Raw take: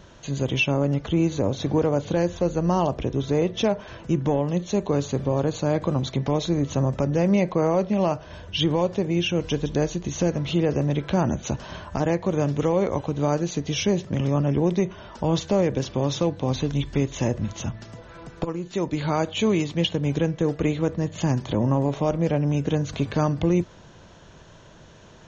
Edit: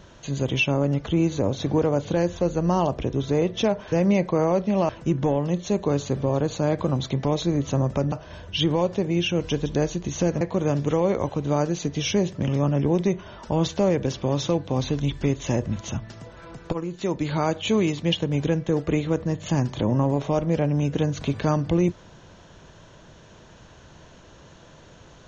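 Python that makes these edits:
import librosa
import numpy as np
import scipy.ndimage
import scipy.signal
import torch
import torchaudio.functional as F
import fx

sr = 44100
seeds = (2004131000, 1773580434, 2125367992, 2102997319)

y = fx.edit(x, sr, fx.move(start_s=7.15, length_s=0.97, to_s=3.92),
    fx.cut(start_s=10.41, length_s=1.72), tone=tone)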